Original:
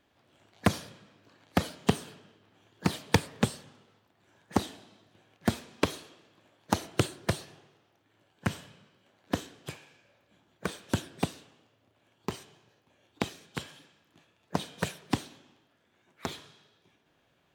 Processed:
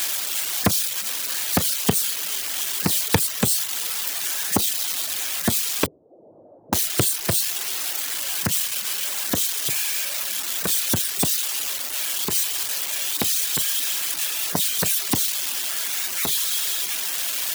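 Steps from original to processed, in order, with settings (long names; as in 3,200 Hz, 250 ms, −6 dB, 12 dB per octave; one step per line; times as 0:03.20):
spike at every zero crossing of −16.5 dBFS
0:05.86–0:06.73: Butterworth low-pass 650 Hz 36 dB per octave
reverb reduction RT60 0.56 s
level +3.5 dB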